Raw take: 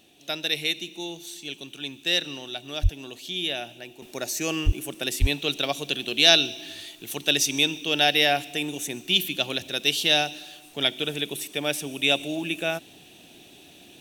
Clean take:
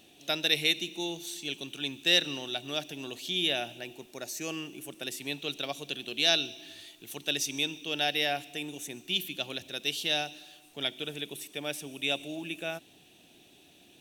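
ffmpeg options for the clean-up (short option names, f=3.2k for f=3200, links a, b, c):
-filter_complex "[0:a]asplit=3[a][b][c];[a]afade=t=out:st=2.82:d=0.02[d];[b]highpass=f=140:w=0.5412,highpass=f=140:w=1.3066,afade=t=in:st=2.82:d=0.02,afade=t=out:st=2.94:d=0.02[e];[c]afade=t=in:st=2.94:d=0.02[f];[d][e][f]amix=inputs=3:normalize=0,asplit=3[g][h][i];[g]afade=t=out:st=4.65:d=0.02[j];[h]highpass=f=140:w=0.5412,highpass=f=140:w=1.3066,afade=t=in:st=4.65:d=0.02,afade=t=out:st=4.77:d=0.02[k];[i]afade=t=in:st=4.77:d=0.02[l];[j][k][l]amix=inputs=3:normalize=0,asplit=3[m][n][o];[m]afade=t=out:st=5.2:d=0.02[p];[n]highpass=f=140:w=0.5412,highpass=f=140:w=1.3066,afade=t=in:st=5.2:d=0.02,afade=t=out:st=5.32:d=0.02[q];[o]afade=t=in:st=5.32:d=0.02[r];[p][q][r]amix=inputs=3:normalize=0,asetnsamples=n=441:p=0,asendcmd='4.02 volume volume -8.5dB',volume=0dB"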